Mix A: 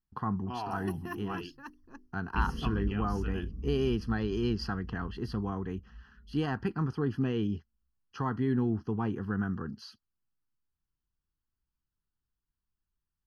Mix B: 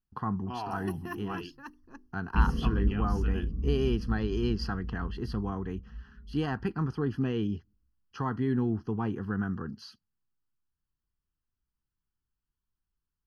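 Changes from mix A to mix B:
second sound +6.5 dB; reverb: on, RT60 0.55 s

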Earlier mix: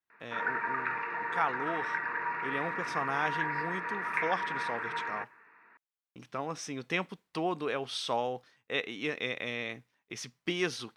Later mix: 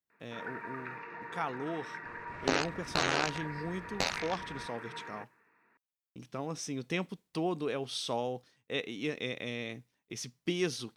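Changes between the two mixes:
speech +4.0 dB; second sound: unmuted; master: add bell 1400 Hz -11 dB 2.8 oct

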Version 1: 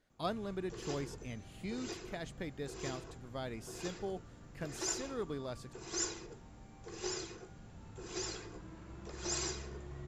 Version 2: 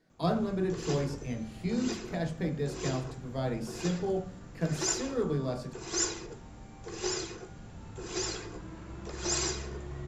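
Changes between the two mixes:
background +6.5 dB; reverb: on, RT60 0.45 s

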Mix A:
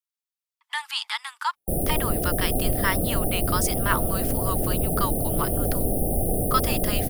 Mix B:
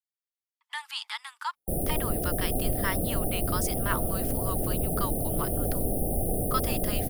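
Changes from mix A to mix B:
speech -6.5 dB; background -4.0 dB

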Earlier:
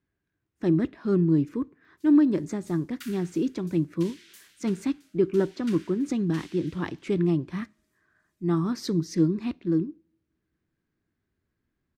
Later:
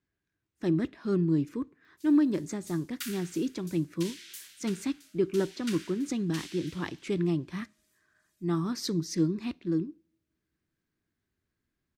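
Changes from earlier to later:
speech -4.5 dB; master: add high shelf 2500 Hz +8.5 dB

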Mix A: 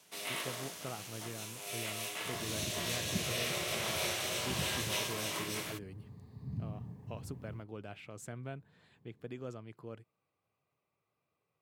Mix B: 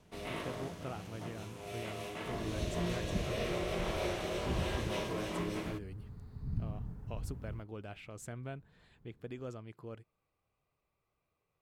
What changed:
first sound: add tilt -4.5 dB/oct; second sound: remove Butterworth band-stop 1400 Hz, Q 3.6; master: remove HPF 98 Hz 24 dB/oct

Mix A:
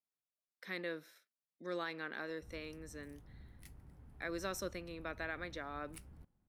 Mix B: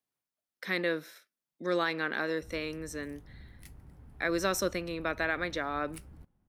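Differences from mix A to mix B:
speech +11.0 dB; background +5.0 dB

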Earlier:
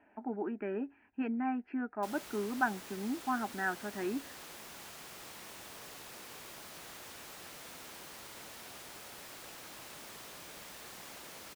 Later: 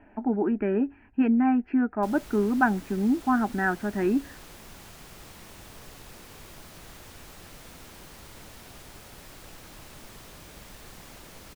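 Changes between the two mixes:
speech +7.0 dB; master: remove HPF 440 Hz 6 dB/oct

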